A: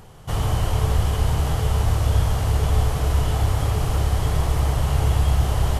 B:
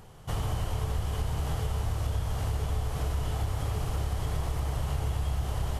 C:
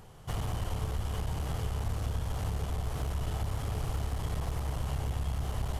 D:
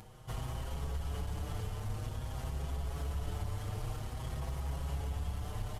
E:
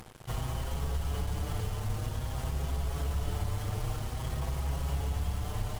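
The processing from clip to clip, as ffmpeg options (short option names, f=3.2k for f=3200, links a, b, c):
-af "acompressor=threshold=-21dB:ratio=4,volume=-5.5dB"
-af "aeval=exprs='clip(val(0),-1,0.0282)':c=same,volume=-1.5dB"
-filter_complex "[0:a]acompressor=mode=upward:threshold=-43dB:ratio=2.5,asplit=2[a][b];[b]adelay=6.1,afreqshift=0.51[c];[a][c]amix=inputs=2:normalize=1,volume=-2dB"
-filter_complex "[0:a]asplit=2[a][b];[b]aeval=exprs='sgn(val(0))*max(abs(val(0))-0.00188,0)':c=same,volume=-9dB[c];[a][c]amix=inputs=2:normalize=0,acrusher=bits=7:mix=0:aa=0.5,volume=2.5dB"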